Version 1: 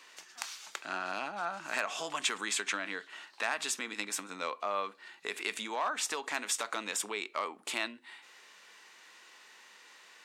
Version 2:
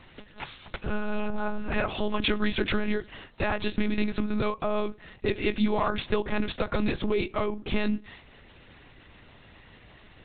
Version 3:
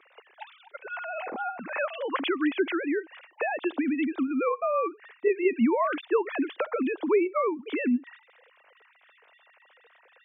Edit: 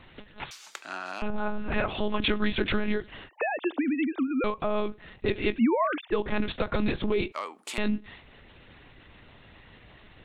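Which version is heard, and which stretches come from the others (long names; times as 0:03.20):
2
0:00.51–0:01.22: punch in from 1
0:03.29–0:04.44: punch in from 3
0:05.55–0:06.14: punch in from 3, crossfade 0.10 s
0:07.32–0:07.78: punch in from 1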